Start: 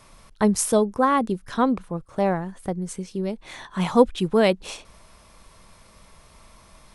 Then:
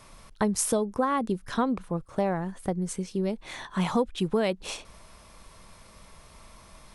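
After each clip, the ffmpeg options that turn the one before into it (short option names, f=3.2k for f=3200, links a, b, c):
-af "acompressor=threshold=-22dB:ratio=5"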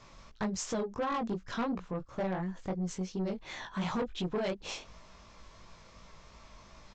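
-af "flanger=delay=16.5:depth=5.3:speed=2.8,aresample=16000,asoftclip=type=tanh:threshold=-28dB,aresample=44100"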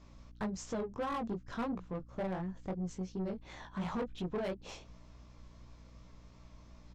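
-filter_complex "[0:a]aeval=exprs='val(0)+0.00251*(sin(2*PI*60*n/s)+sin(2*PI*2*60*n/s)/2+sin(2*PI*3*60*n/s)/3+sin(2*PI*4*60*n/s)/4+sin(2*PI*5*60*n/s)/5)':c=same,asplit=2[a][b];[b]adynamicsmooth=sensitivity=7.5:basefreq=610,volume=-0.5dB[c];[a][c]amix=inputs=2:normalize=0,volume=-9dB"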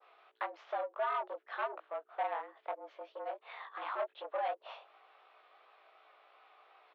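-af "adynamicequalizer=threshold=0.00141:dfrequency=2600:dqfactor=0.72:tfrequency=2600:tqfactor=0.72:attack=5:release=100:ratio=0.375:range=3:mode=cutabove:tftype=bell,highpass=f=440:t=q:w=0.5412,highpass=f=440:t=q:w=1.307,lowpass=f=3.3k:t=q:w=0.5176,lowpass=f=3.3k:t=q:w=0.7071,lowpass=f=3.3k:t=q:w=1.932,afreqshift=140,volume=4.5dB"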